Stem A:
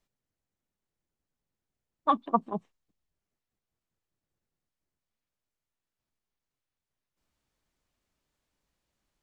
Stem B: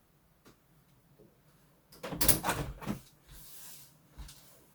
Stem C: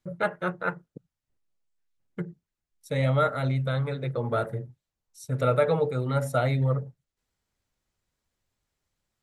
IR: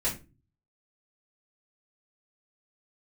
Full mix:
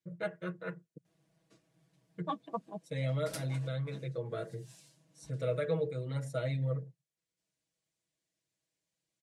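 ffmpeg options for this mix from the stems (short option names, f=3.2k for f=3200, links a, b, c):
-filter_complex "[0:a]aemphasis=mode=production:type=50fm,adelay=200,volume=-11.5dB[a];[1:a]aeval=exprs='if(lt(val(0),0),0.708*val(0),val(0))':c=same,adelay=1050,volume=-6dB[b];[2:a]equalizer=f=740:t=o:w=0.33:g=-13,volume=-10.5dB,asplit=2[c][d];[d]apad=whole_len=255482[e];[b][e]sidechaincompress=threshold=-50dB:ratio=5:attack=43:release=122[f];[a][f][c]amix=inputs=3:normalize=0,highpass=110,equalizer=f=630:t=q:w=4:g=4,equalizer=f=900:t=q:w=4:g=-6,equalizer=f=1.3k:t=q:w=4:g=-9,lowpass=f=9.6k:w=0.5412,lowpass=f=9.6k:w=1.3066,aecho=1:1:6.2:0.79"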